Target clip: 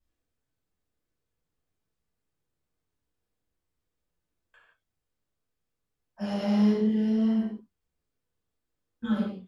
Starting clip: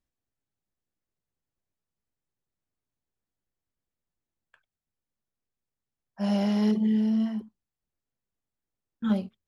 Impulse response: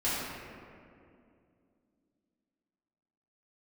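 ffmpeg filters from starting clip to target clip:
-filter_complex "[0:a]alimiter=limit=-23dB:level=0:latency=1:release=323[link_01];[1:a]atrim=start_sample=2205,afade=type=out:start_time=0.37:duration=0.01,atrim=end_sample=16758,asetrate=74970,aresample=44100[link_02];[link_01][link_02]afir=irnorm=-1:irlink=0"

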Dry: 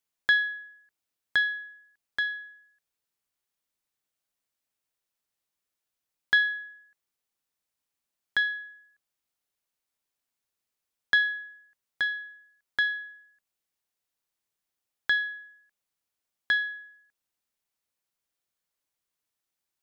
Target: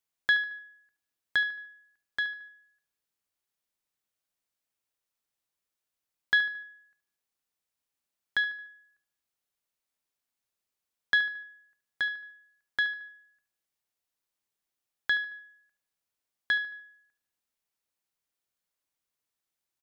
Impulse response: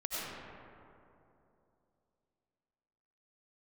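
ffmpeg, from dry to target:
-filter_complex "[0:a]asplit=2[link_01][link_02];[link_02]adelay=74,lowpass=frequency=4400:poles=1,volume=-13.5dB,asplit=2[link_03][link_04];[link_04]adelay=74,lowpass=frequency=4400:poles=1,volume=0.43,asplit=2[link_05][link_06];[link_06]adelay=74,lowpass=frequency=4400:poles=1,volume=0.43,asplit=2[link_07][link_08];[link_08]adelay=74,lowpass=frequency=4400:poles=1,volume=0.43[link_09];[link_01][link_03][link_05][link_07][link_09]amix=inputs=5:normalize=0,volume=-2dB"

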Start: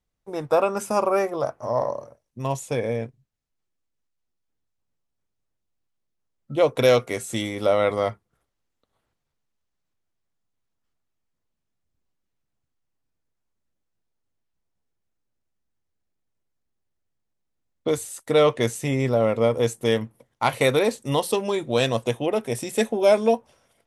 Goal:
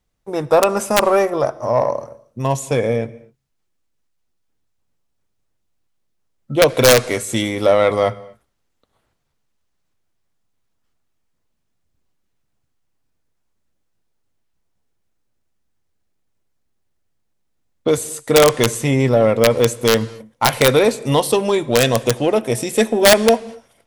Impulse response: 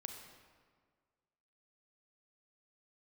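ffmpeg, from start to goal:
-filter_complex "[0:a]aeval=exprs='(mod(2.82*val(0)+1,2)-1)/2.82':channel_layout=same,aeval=exprs='0.355*(cos(1*acos(clip(val(0)/0.355,-1,1)))-cos(1*PI/2))+0.0158*(cos(5*acos(clip(val(0)/0.355,-1,1)))-cos(5*PI/2))':channel_layout=same,asplit=2[link_01][link_02];[1:a]atrim=start_sample=2205,afade=type=out:start_time=0.18:duration=0.01,atrim=end_sample=8379,asetrate=22491,aresample=44100[link_03];[link_02][link_03]afir=irnorm=-1:irlink=0,volume=-12.5dB[link_04];[link_01][link_04]amix=inputs=2:normalize=0,volume=4.5dB"

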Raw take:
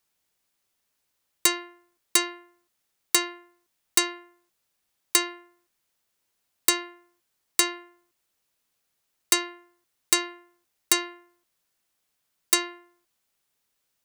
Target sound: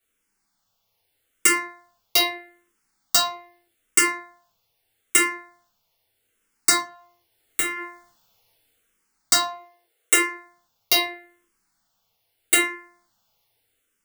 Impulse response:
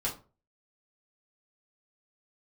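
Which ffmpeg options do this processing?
-filter_complex "[0:a]asplit=3[link_01][link_02][link_03];[link_01]afade=type=out:start_time=6.76:duration=0.02[link_04];[link_02]acompressor=threshold=-30dB:ratio=6,afade=type=in:start_time=6.76:duration=0.02,afade=type=out:start_time=7.75:duration=0.02[link_05];[link_03]afade=type=in:start_time=7.75:duration=0.02[link_06];[link_04][link_05][link_06]amix=inputs=3:normalize=0,asplit=3[link_07][link_08][link_09];[link_07]afade=type=out:start_time=9.41:duration=0.02[link_10];[link_08]lowshelf=frequency=320:width_type=q:width=3:gain=-13,afade=type=in:start_time=9.41:duration=0.02,afade=type=out:start_time=10.13:duration=0.02[link_11];[link_09]afade=type=in:start_time=10.13:duration=0.02[link_12];[link_10][link_11][link_12]amix=inputs=3:normalize=0[link_13];[1:a]atrim=start_sample=2205[link_14];[link_13][link_14]afir=irnorm=-1:irlink=0,dynaudnorm=framelen=140:gausssize=11:maxgain=12dB,asplit=2[link_15][link_16];[link_16]afreqshift=-0.8[link_17];[link_15][link_17]amix=inputs=2:normalize=1,volume=2dB"

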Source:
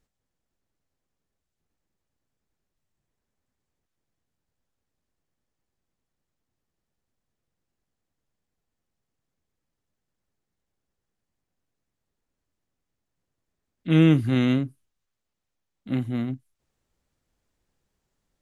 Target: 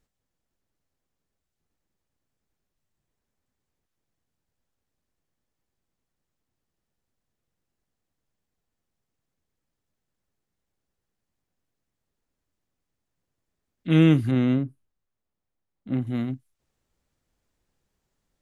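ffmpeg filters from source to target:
ffmpeg -i in.wav -filter_complex "[0:a]asettb=1/sr,asplit=3[link_01][link_02][link_03];[link_01]atrim=end=14.314[link_04];[link_02]atrim=start=14.31:end=16.07,asetpts=PTS-STARTPTS,afade=type=in:duration=0.004:curve=qsin,afade=type=out:start_time=1.756:duration=0.004:curve=qsin,highshelf=frequency=2000:gain=-11.5[link_05];[link_03]atrim=start=16.066[link_06];[link_04][link_05]acrossfade=duration=0.004:curve1=hsin:curve2=qsin[link_07];[link_07][link_06]acrossfade=duration=0.004:curve1=qsin:curve2=hsin" out.wav

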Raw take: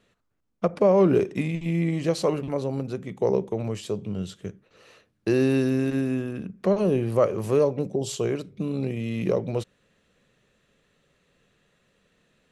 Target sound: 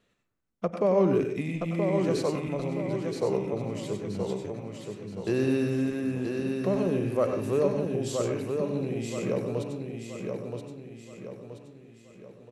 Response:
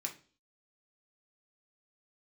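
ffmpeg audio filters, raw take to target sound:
-filter_complex "[0:a]aecho=1:1:975|1950|2925|3900|4875:0.562|0.247|0.109|0.0479|0.0211,asplit=2[link_01][link_02];[1:a]atrim=start_sample=2205,adelay=95[link_03];[link_02][link_03]afir=irnorm=-1:irlink=0,volume=-4.5dB[link_04];[link_01][link_04]amix=inputs=2:normalize=0,volume=-5.5dB"

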